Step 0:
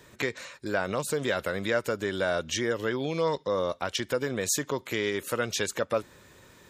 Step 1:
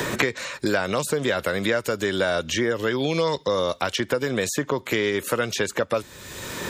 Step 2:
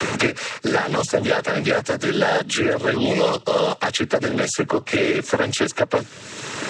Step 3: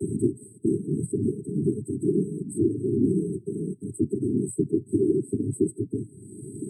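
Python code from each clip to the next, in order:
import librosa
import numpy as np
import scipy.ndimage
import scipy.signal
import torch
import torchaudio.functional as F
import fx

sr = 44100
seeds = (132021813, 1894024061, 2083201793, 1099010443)

y1 = fx.band_squash(x, sr, depth_pct=100)
y1 = y1 * librosa.db_to_amplitude(4.5)
y2 = fx.noise_vocoder(y1, sr, seeds[0], bands=12)
y2 = y2 * librosa.db_to_amplitude(4.0)
y3 = fx.brickwall_bandstop(y2, sr, low_hz=420.0, high_hz=8000.0)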